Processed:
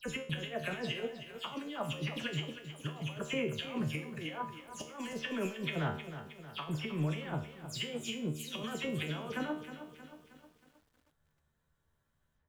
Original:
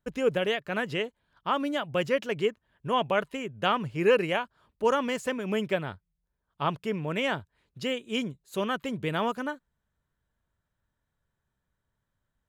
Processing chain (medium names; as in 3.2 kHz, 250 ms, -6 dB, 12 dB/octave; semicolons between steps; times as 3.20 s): delay that grows with frequency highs early, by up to 128 ms; compressor with a negative ratio -34 dBFS, ratio -0.5; feedback comb 76 Hz, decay 0.49 s, harmonics all, mix 80%; bit-crushed delay 314 ms, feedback 55%, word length 11-bit, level -11 dB; trim +5 dB